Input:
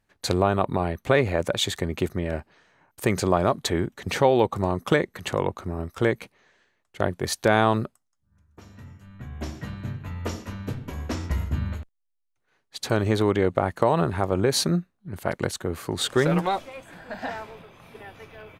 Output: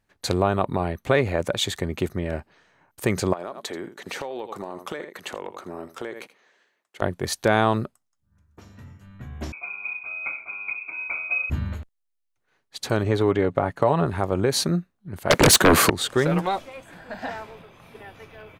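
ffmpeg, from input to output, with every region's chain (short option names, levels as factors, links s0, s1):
-filter_complex "[0:a]asettb=1/sr,asplit=3[s0][s1][s2];[s0]atrim=end=3.334[s3];[s1]atrim=start=3.33:end=7.02,asetpts=PTS-STARTPTS,afade=t=in:d=0.004:c=qsin,afade=t=out:st=3.686:d=0.004:c=qsin,highpass=300,aecho=1:1:81:0.158,atrim=end_sample=162729,acompressor=threshold=0.0398:ratio=8:attack=3.2:release=140:knee=1:detection=peak[s4];[s2]atrim=start=7.016[s5];[s3][s4]acrossfade=d=0.004:c1=hsin:c2=qsin[s6];[s6][s5]acrossfade=d=0.004:c1=qsin:c2=hsin,asettb=1/sr,asplit=3[s7][s8][s9];[s7]atrim=end=9.524[s10];[s8]atrim=start=9.52:end=11.5,asetpts=PTS-STARTPTS,afade=t=in:d=0.004:c=qsin,afade=t=out:st=1.976:d=0.004:c=qsin,lowpass=f=2200:t=q:w=0.5098,lowpass=f=2200:t=q:w=0.6013,lowpass=f=2200:t=q:w=0.9,lowpass=f=2200:t=q:w=2.563,afreqshift=-2600,asuperstop=centerf=1800:order=12:qfactor=3.1[s11];[s9]atrim=start=11.496[s12];[s10][s11]acrossfade=d=0.004:c1=hsin:c2=qsin[s13];[s13][s12]acrossfade=d=0.004:c1=qsin:c2=hsin,asettb=1/sr,asplit=3[s14][s15][s16];[s14]atrim=end=13.034[s17];[s15]atrim=start=13.03:end=14.06,asetpts=PTS-STARTPTS,afade=t=in:d=0.004:c=qsin,afade=t=out:st=1.026:d=0.004:c=qsin,highshelf=f=4300:g=-8,aecho=1:1:7.1:0.36,atrim=end_sample=45423[s18];[s16]atrim=start=14.056[s19];[s17][s18]acrossfade=d=0.004:c1=hsin:c2=qsin[s20];[s20][s19]acrossfade=d=0.004:c1=qsin:c2=hsin,asettb=1/sr,asplit=3[s21][s22][s23];[s21]atrim=end=15.304[s24];[s22]atrim=start=15.3:end=15.9,asetpts=PTS-STARTPTS,afade=t=in:d=0.004:c=qsin,afade=t=out:st=0.596:d=0.004:c=qsin,highpass=150,aeval=exprs='0.355*sin(PI/2*8.91*val(0)/0.355)':c=same[s25];[s23]atrim=start=15.896[s26];[s24][s25]acrossfade=d=0.004:c1=hsin:c2=qsin[s27];[s27][s26]acrossfade=d=0.004:c1=qsin:c2=hsin"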